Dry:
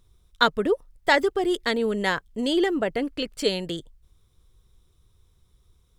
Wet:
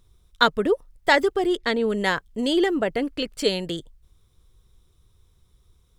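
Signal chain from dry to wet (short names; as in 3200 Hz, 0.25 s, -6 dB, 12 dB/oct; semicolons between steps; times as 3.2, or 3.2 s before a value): 1.47–1.9 high shelf 7900 Hz -12 dB; gain +1.5 dB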